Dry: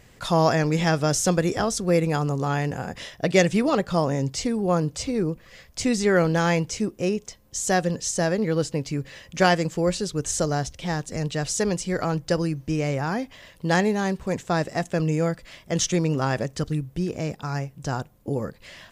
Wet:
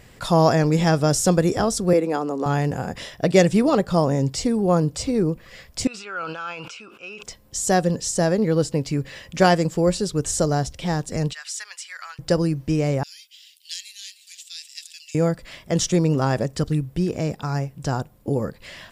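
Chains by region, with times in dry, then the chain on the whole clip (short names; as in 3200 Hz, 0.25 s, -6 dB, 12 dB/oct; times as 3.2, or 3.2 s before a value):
1.93–2.46 steep high-pass 210 Hz + high shelf 3600 Hz -8.5 dB
5.87–7.23 double band-pass 1900 Hz, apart 0.89 oct + sustainer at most 43 dB/s
11.33–12.19 HPF 1500 Hz 24 dB/oct + high shelf 3400 Hz -8 dB
13.03–15.15 steep high-pass 2900 Hz + echo with dull and thin repeats by turns 0.156 s, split 970 Hz, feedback 53%, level -9 dB
whole clip: notch 6300 Hz, Q 12; dynamic EQ 2300 Hz, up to -6 dB, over -40 dBFS, Q 0.74; gain +4 dB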